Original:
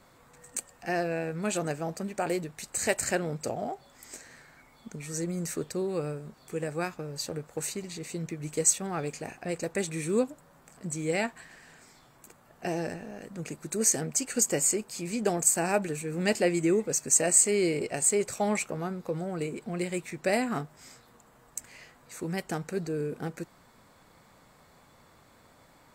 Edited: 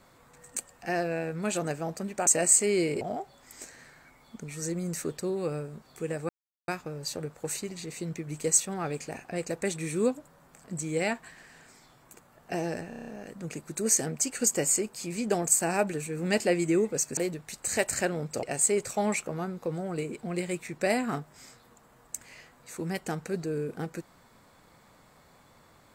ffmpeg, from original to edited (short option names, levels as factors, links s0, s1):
-filter_complex "[0:a]asplit=12[s0][s1][s2][s3][s4][s5][s6][s7][s8][s9][s10][s11];[s0]atrim=end=2.272[s12];[s1]atrim=start=17.118:end=17.862[s13];[s2]atrim=start=3.528:end=6.81,asetpts=PTS-STARTPTS,afade=t=out:st=3.278:d=0.004:c=hsin,apad=pad_dur=0.39[s14];[s3]atrim=start=6.81:end=13.052,asetpts=PTS-STARTPTS,afade=t=in:d=0.004:c=hsin[s15];[s4]atrim=start=13.018:end=13.052[s16];[s5]atrim=start=13.018:end=13.052[s17];[s6]atrim=start=13.018:end=13.052[s18];[s7]atrim=start=13.018:end=13.052[s19];[s8]atrim=start=13.018:end=13.052[s20];[s9]atrim=start=13.018:end=17.122[s21];[s10]atrim=start=2.268:end=3.532[s22];[s11]atrim=start=17.858[s23];[s12][s13]acrossfade=d=0.004:c1=hsin:c2=hsin[s24];[s14][s15]concat=n=2:v=0:a=1[s25];[s24][s25]acrossfade=d=0.004:c1=hsin:c2=hsin[s26];[s26][s16]acrossfade=d=0.004:c1=hsin:c2=hsin[s27];[s27][s17]acrossfade=d=0.004:c1=hsin:c2=hsin[s28];[s28][s18]acrossfade=d=0.004:c1=hsin:c2=hsin[s29];[s29][s19]acrossfade=d=0.004:c1=hsin:c2=hsin[s30];[s30][s20]acrossfade=d=0.004:c1=hsin:c2=hsin[s31];[s31][s21]acrossfade=d=0.004:c1=hsin:c2=hsin[s32];[s32][s22]acrossfade=d=0.004:c1=hsin:c2=hsin[s33];[s33][s23]acrossfade=d=0.004:c1=hsin:c2=hsin"